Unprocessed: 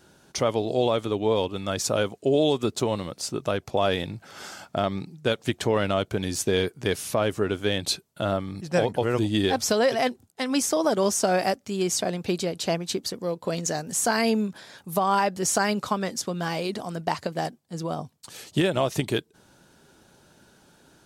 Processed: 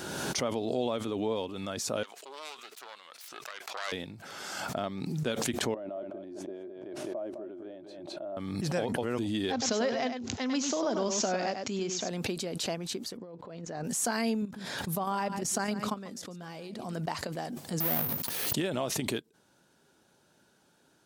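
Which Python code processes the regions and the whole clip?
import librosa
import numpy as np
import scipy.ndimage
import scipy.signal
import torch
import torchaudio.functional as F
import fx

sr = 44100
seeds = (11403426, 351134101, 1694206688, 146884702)

y = fx.chain(x, sr, fx.self_delay(depth_ms=0.27),
    fx.highpass(hz=1400.0, slope=12),
    fx.high_shelf(hz=4500.0, db=-9.0), at=(2.03, 3.92))
y = fx.chain(y, sr, fx.double_bandpass(hz=460.0, octaves=0.78),
    fx.echo_single(ms=209, db=-12.0),
    fx.sustainer(db_per_s=48.0), at=(5.74, 8.37))
y = fx.chain(y, sr, fx.echo_single(ms=99, db=-7.0),
    fx.resample_bad(factor=3, down='none', up='filtered'), at=(9.52, 12.09))
y = fx.chain(y, sr, fx.over_compress(threshold_db=-34.0, ratio=-1.0),
    fx.spacing_loss(db_at_10k=26), at=(13.17, 13.84))
y = fx.chain(y, sr, fx.low_shelf(hz=250.0, db=7.0),
    fx.level_steps(step_db=11),
    fx.echo_single(ms=141, db=-16.5), at=(14.42, 16.93))
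y = fx.chain(y, sr, fx.halfwave_hold(),
    fx.resample_bad(factor=3, down='filtered', up='zero_stuff'),
    fx.sustainer(db_per_s=21.0), at=(17.8, 18.53))
y = fx.highpass(y, sr, hz=150.0, slope=6)
y = fx.dynamic_eq(y, sr, hz=240.0, q=4.8, threshold_db=-46.0, ratio=4.0, max_db=7)
y = fx.pre_swell(y, sr, db_per_s=27.0)
y = y * librosa.db_to_amplitude(-9.0)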